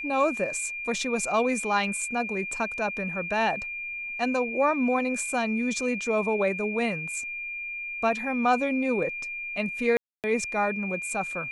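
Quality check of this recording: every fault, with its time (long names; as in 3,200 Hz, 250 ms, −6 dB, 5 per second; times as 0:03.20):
whistle 2,400 Hz −32 dBFS
0:09.97–0:10.24: drop-out 268 ms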